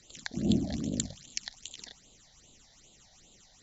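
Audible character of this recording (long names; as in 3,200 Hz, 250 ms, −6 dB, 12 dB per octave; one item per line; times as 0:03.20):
phaser sweep stages 8, 2.5 Hz, lowest notch 340–1,800 Hz
Opus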